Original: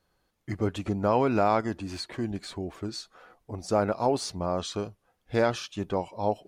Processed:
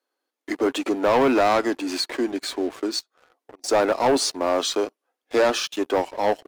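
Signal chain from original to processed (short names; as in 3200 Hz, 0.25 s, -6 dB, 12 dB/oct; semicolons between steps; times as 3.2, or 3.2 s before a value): Chebyshev high-pass 260 Hz, order 5; 2.99–3.64 compressor 4:1, threshold -53 dBFS, peak gain reduction 15 dB; sample leveller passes 3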